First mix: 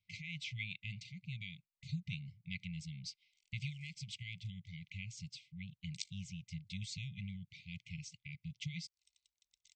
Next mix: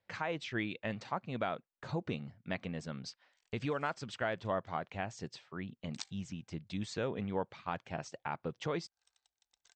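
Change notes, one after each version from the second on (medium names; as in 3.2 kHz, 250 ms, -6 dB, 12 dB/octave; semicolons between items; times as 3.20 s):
master: remove brick-wall FIR band-stop 190–2000 Hz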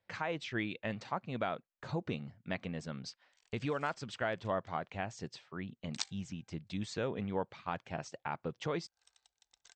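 background +6.0 dB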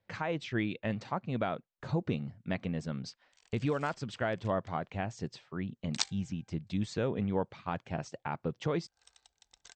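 background +6.0 dB; master: add bass shelf 470 Hz +7 dB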